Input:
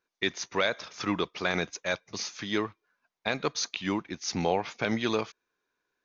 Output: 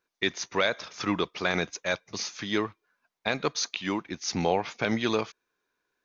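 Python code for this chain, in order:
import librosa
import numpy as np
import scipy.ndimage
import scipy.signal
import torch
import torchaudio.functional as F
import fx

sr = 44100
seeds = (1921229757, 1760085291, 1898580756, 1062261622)

y = fx.low_shelf(x, sr, hz=160.0, db=-7.5, at=(3.53, 4.05))
y = F.gain(torch.from_numpy(y), 1.5).numpy()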